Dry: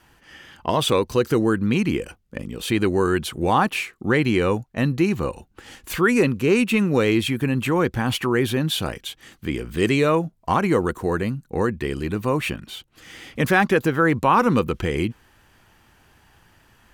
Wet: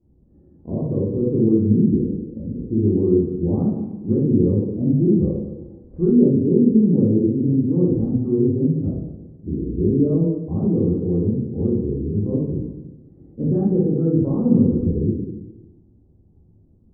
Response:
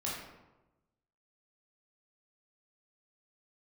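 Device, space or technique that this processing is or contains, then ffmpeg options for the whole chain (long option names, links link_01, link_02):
next room: -filter_complex "[0:a]lowpass=frequency=400:width=0.5412,lowpass=frequency=400:width=1.3066[link_01];[1:a]atrim=start_sample=2205[link_02];[link_01][link_02]afir=irnorm=-1:irlink=0,asettb=1/sr,asplit=3[link_03][link_04][link_05];[link_03]atrim=end=5.054[link_06];[link_04]atrim=start=5.05:end=6.31,asetpts=PTS-STARTPTS,afade=type=in:duration=0.004:curve=qsin,afade=type=out:start_time=1.256:duration=0.004:curve=qsin,equalizer=frequency=650:width=1.3:gain=5[link_07];[link_05]atrim=start=6.306[link_08];[link_06][link_07]acrossfade=duration=0.004:curve1=hsin:curve2=qsin[link_09];[link_09][link_08]acrossfade=duration=0.004:curve1=qsin:curve2=hsin"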